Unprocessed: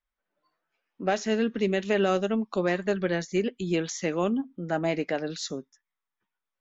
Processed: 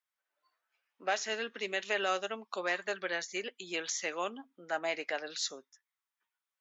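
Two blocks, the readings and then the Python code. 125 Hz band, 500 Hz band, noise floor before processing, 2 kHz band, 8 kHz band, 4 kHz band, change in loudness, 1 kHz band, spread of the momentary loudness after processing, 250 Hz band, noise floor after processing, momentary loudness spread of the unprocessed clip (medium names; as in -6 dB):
-25.5 dB, -10.0 dB, under -85 dBFS, -1.0 dB, no reading, 0.0 dB, -7.5 dB, -4.0 dB, 7 LU, -19.0 dB, under -85 dBFS, 7 LU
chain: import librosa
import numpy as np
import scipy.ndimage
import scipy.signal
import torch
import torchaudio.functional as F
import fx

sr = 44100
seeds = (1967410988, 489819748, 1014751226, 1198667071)

y = scipy.signal.sosfilt(scipy.signal.bessel(2, 1000.0, 'highpass', norm='mag', fs=sr, output='sos'), x)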